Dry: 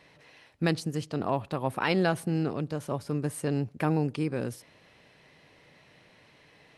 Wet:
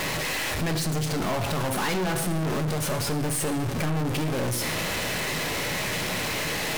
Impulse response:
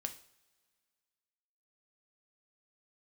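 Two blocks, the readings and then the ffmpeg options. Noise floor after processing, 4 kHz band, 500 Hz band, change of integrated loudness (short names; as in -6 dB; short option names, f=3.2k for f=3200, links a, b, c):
-29 dBFS, +13.0 dB, +2.5 dB, +3.5 dB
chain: -filter_complex "[0:a]aeval=exprs='val(0)+0.5*0.0447*sgn(val(0))':c=same[a];[1:a]atrim=start_sample=2205,asetrate=30429,aresample=44100[b];[a][b]afir=irnorm=-1:irlink=0,aeval=exprs='(tanh(35.5*val(0)+0.3)-tanh(0.3))/35.5':c=same,volume=6.5dB"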